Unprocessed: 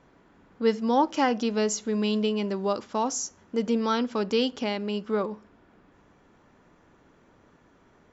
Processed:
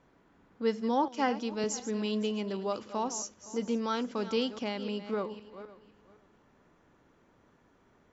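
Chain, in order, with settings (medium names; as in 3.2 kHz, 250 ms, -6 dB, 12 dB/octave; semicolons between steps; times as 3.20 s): backward echo that repeats 257 ms, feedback 42%, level -12.5 dB; 1.08–1.64 s: three bands expanded up and down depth 70%; trim -6 dB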